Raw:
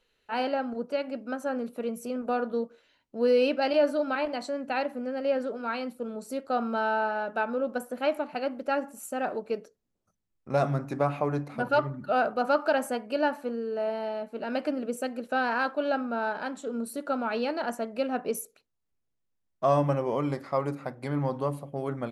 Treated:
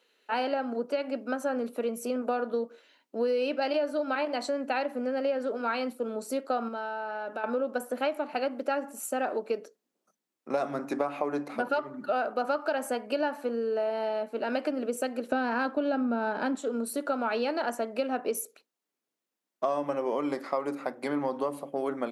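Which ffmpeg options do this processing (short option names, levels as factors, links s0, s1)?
-filter_complex "[0:a]asettb=1/sr,asplit=3[s0][s1][s2];[s0]atrim=end=6.684[s3];[s1]atrim=start=6.68:end=7.44,asetpts=PTS-STARTPTS,afade=t=in:d=0.004:c=qsin,afade=t=out:st=0.756:d=0.004:c=qsin,acompressor=threshold=0.0158:ratio=6:attack=3.2:release=140:knee=1:detection=peak[s4];[s2]atrim=start=7.436[s5];[s3][s4]acrossfade=d=0.004:c1=hsin:c2=qsin[s6];[s6][s5]acrossfade=d=0.004:c1=qsin:c2=hsin,asettb=1/sr,asplit=3[s7][s8][s9];[s7]atrim=end=15.274[s10];[s8]atrim=start=15.27:end=16.55,asetpts=PTS-STARTPTS,afade=t=in:d=0.004:c=qsin,afade=t=out:st=1.276:d=0.004:c=qsin,equalizer=f=200:t=o:w=1.8:g=12[s11];[s9]atrim=start=16.546[s12];[s10][s11]acrossfade=d=0.004:c1=hsin:c2=qsin[s13];[s13][s12]acrossfade=d=0.004:c1=qsin:c2=hsin,highpass=f=240:w=0.5412,highpass=f=240:w=1.3066,acompressor=threshold=0.0316:ratio=6,volume=1.68"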